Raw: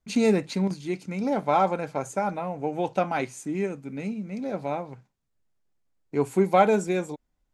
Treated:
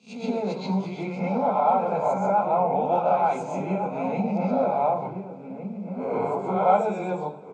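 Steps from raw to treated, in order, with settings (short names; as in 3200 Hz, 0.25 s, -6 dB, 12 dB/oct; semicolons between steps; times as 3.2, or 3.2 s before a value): spectral swells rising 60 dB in 0.35 s; recorder AGC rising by 53 dB/s; BPF 170–2100 Hz; bell 330 Hz +4 dB 0.47 oct; fixed phaser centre 760 Hz, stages 4; outdoor echo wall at 250 m, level -7 dB; reverb RT60 0.40 s, pre-delay 0.121 s, DRR -6 dB; warbling echo 0.105 s, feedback 74%, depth 86 cents, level -22 dB; gain -4 dB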